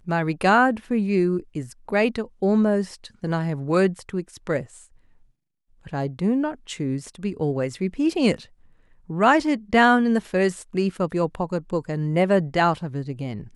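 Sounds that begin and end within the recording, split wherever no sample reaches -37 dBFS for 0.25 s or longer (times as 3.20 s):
5.86–8.43 s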